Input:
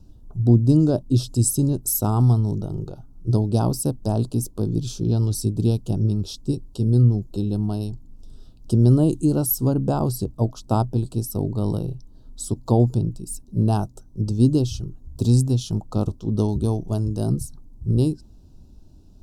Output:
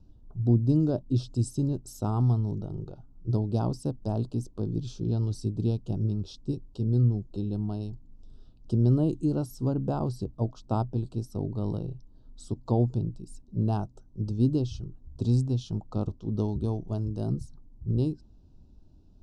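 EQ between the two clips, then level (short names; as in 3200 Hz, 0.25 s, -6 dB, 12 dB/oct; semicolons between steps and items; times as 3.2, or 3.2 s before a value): air absorption 110 m; -7.0 dB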